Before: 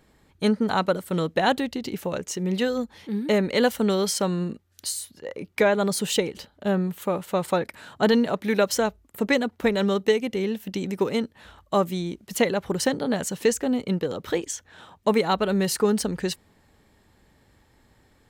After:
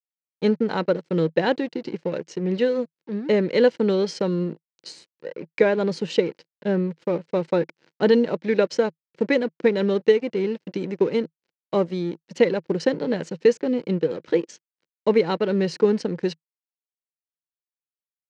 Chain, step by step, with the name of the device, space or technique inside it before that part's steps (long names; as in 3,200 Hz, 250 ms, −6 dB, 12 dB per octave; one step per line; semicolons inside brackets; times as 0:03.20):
blown loudspeaker (dead-zone distortion −38.5 dBFS; loudspeaker in its box 160–5,000 Hz, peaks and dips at 160 Hz +8 dB, 340 Hz +7 dB, 490 Hz +7 dB, 720 Hz −6 dB, 1,200 Hz −7 dB, 3,500 Hz −6 dB)